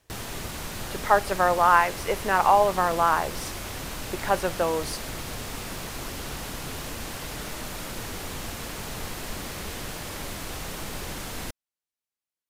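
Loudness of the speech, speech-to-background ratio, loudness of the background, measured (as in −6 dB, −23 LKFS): −23.0 LKFS, 11.5 dB, −34.5 LKFS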